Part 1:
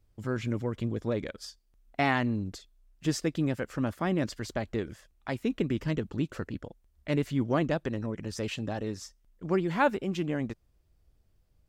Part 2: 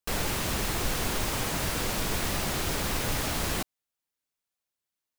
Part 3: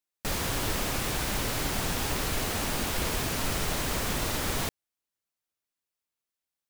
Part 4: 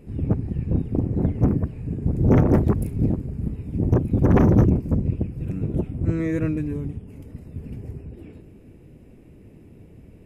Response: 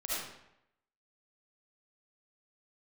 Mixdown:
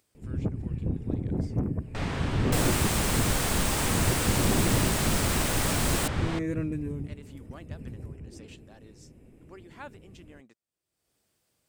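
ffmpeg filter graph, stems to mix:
-filter_complex "[0:a]highpass=200,tiltshelf=f=1.2k:g=-4,acompressor=mode=upward:threshold=-40dB:ratio=2.5,volume=-17.5dB[a];[1:a]adelay=2450,volume=0.5dB[b];[2:a]lowpass=3k,adelay=1700,volume=-2dB[c];[3:a]adelay=150,volume=-5.5dB[d];[a][d]amix=inputs=2:normalize=0,acompressor=threshold=-25dB:ratio=2.5,volume=0dB[e];[b][c][e]amix=inputs=3:normalize=0,equalizer=f=8.4k:t=o:w=0.41:g=7"

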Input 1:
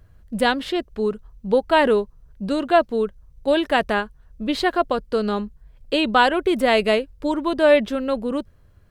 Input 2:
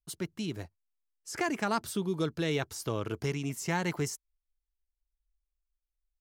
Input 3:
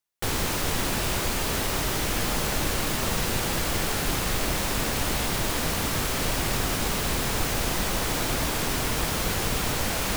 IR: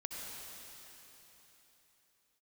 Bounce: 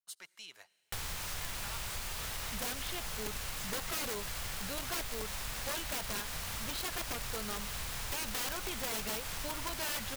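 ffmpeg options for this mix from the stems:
-filter_complex "[0:a]adelay=2200,volume=-2dB[a];[1:a]highpass=700,asoftclip=type=tanh:threshold=-31.5dB,volume=-4dB,asplit=2[b][c];[c]volume=-20dB[d];[2:a]adelay=700,volume=-4.5dB[e];[3:a]atrim=start_sample=2205[f];[d][f]afir=irnorm=-1:irlink=0[g];[a][b][e][g]amix=inputs=4:normalize=0,equalizer=f=310:t=o:w=1.8:g=-15,aeval=exprs='(mod(11.2*val(0)+1,2)-1)/11.2':c=same,acompressor=threshold=-38dB:ratio=3"

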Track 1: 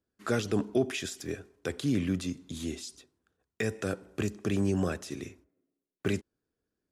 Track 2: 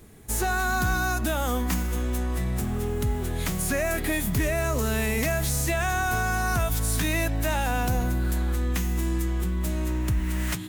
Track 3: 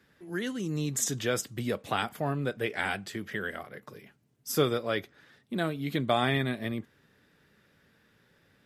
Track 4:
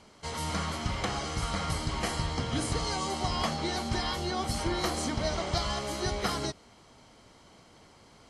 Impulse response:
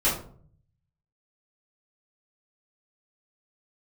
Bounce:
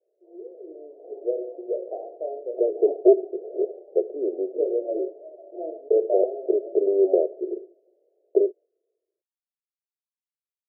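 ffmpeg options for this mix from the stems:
-filter_complex "[0:a]dynaudnorm=f=170:g=5:m=7dB,adelay=2300,volume=3dB[a];[2:a]volume=-5dB,asplit=2[b][c];[c]volume=-15dB[d];[3:a]volume=-17dB,asplit=2[e][f];[f]volume=-15.5dB[g];[4:a]atrim=start_sample=2205[h];[d][g]amix=inputs=2:normalize=0[i];[i][h]afir=irnorm=-1:irlink=0[j];[a][b][e][j]amix=inputs=4:normalize=0,dynaudnorm=f=380:g=5:m=9.5dB,asuperpass=centerf=490:order=12:qfactor=1.5"

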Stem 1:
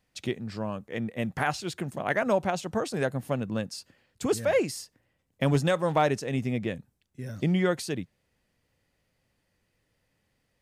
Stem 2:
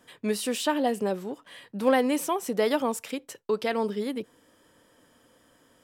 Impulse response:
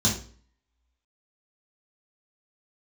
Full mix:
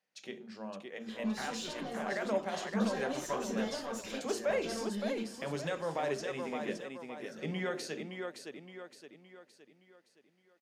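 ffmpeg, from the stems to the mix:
-filter_complex "[0:a]highpass=360,alimiter=limit=-19dB:level=0:latency=1,volume=-8.5dB,asplit=4[a][b][c][d];[b]volume=-19dB[e];[c]volume=-5.5dB[f];[1:a]equalizer=f=160:w=0.37:g=-12.5,acompressor=threshold=-47dB:ratio=2,aeval=exprs='(tanh(112*val(0)+0.4)-tanh(0.4))/112':c=same,adelay=1000,volume=0dB,asplit=3[g][h][i];[h]volume=-9.5dB[j];[i]volume=-18dB[k];[d]apad=whole_len=301362[l];[g][l]sidechaincompress=threshold=-48dB:ratio=8:attack=16:release=517[m];[2:a]atrim=start_sample=2205[n];[e][j]amix=inputs=2:normalize=0[o];[o][n]afir=irnorm=-1:irlink=0[p];[f][k]amix=inputs=2:normalize=0,aecho=0:1:567|1134|1701|2268|2835|3402:1|0.44|0.194|0.0852|0.0375|0.0165[q];[a][m][p][q]amix=inputs=4:normalize=0,equalizer=f=100:w=3.5:g=-14.5,dynaudnorm=f=220:g=17:m=3.5dB,highshelf=f=8k:g=-9"

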